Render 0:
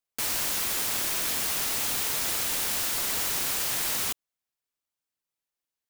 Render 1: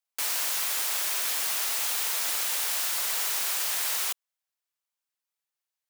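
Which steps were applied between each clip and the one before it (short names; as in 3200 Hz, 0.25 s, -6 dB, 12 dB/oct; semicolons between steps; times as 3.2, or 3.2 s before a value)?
HPF 630 Hz 12 dB/oct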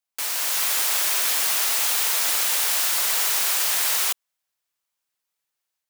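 AGC gain up to 5 dB; gain +1.5 dB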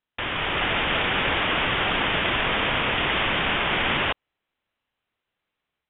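inverted band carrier 4000 Hz; gain +6.5 dB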